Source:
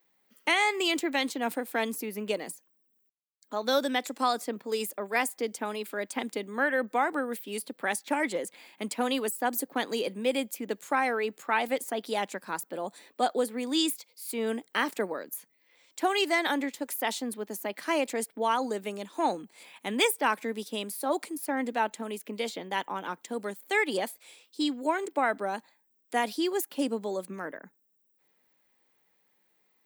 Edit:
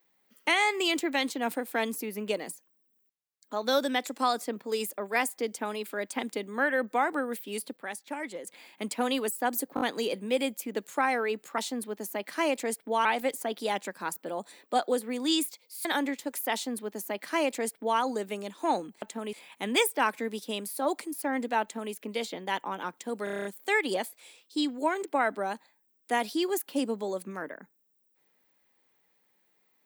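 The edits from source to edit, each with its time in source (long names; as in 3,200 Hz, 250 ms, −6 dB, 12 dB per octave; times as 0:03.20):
0:07.77–0:08.47: clip gain −8 dB
0:09.75: stutter 0.02 s, 4 plays
0:14.32–0:16.40: remove
0:17.08–0:18.55: duplicate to 0:11.52
0:21.86–0:22.17: duplicate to 0:19.57
0:23.48: stutter 0.03 s, 8 plays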